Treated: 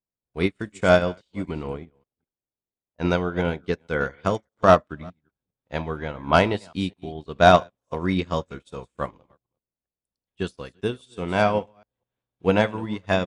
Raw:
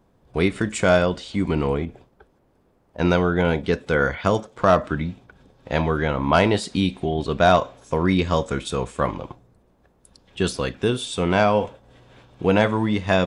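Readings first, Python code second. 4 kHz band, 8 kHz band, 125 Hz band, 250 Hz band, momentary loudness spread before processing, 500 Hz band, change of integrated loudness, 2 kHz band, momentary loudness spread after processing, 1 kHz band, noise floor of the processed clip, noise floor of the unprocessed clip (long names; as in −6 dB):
−3.0 dB, can't be measured, −4.5 dB, −4.5 dB, 9 LU, −2.0 dB, −2.0 dB, −2.0 dB, 17 LU, −0.5 dB, below −85 dBFS, −62 dBFS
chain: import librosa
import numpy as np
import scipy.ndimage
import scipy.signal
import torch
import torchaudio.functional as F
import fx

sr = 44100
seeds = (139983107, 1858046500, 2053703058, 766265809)

y = fx.reverse_delay(x, sr, ms=204, wet_db=-13.5)
y = fx.upward_expand(y, sr, threshold_db=-40.0, expansion=2.5)
y = y * librosa.db_to_amplitude(3.5)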